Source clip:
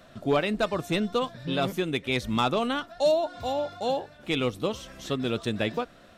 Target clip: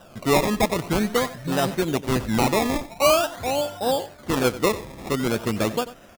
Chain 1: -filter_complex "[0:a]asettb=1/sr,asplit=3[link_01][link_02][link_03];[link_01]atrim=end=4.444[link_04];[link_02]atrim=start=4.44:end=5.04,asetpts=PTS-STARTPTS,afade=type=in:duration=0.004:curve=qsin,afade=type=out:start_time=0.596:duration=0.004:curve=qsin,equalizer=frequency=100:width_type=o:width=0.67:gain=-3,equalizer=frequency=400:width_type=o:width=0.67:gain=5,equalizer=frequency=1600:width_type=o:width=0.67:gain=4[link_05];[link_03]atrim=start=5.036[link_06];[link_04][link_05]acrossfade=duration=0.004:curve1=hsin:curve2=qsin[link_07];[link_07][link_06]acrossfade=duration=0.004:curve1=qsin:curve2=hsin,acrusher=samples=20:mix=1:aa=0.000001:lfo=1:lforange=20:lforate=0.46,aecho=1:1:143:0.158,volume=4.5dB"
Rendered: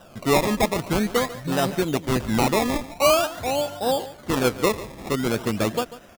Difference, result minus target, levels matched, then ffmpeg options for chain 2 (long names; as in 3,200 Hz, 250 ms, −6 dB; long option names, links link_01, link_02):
echo 51 ms late
-filter_complex "[0:a]asettb=1/sr,asplit=3[link_01][link_02][link_03];[link_01]atrim=end=4.444[link_04];[link_02]atrim=start=4.44:end=5.04,asetpts=PTS-STARTPTS,afade=type=in:duration=0.004:curve=qsin,afade=type=out:start_time=0.596:duration=0.004:curve=qsin,equalizer=frequency=100:width_type=o:width=0.67:gain=-3,equalizer=frequency=400:width_type=o:width=0.67:gain=5,equalizer=frequency=1600:width_type=o:width=0.67:gain=4[link_05];[link_03]atrim=start=5.036[link_06];[link_04][link_05]acrossfade=duration=0.004:curve1=hsin:curve2=qsin[link_07];[link_07][link_06]acrossfade=duration=0.004:curve1=qsin:curve2=hsin,acrusher=samples=20:mix=1:aa=0.000001:lfo=1:lforange=20:lforate=0.46,aecho=1:1:92:0.158,volume=4.5dB"